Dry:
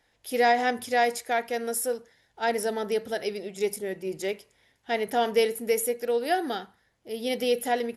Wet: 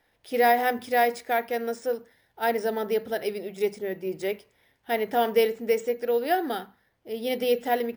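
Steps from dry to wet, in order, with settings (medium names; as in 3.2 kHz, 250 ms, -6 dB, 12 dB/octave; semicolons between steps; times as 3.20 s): treble shelf 4.8 kHz -8.5 dB; careless resampling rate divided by 3×, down filtered, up hold; hum notches 50/100/150/200/250 Hz; trim +1.5 dB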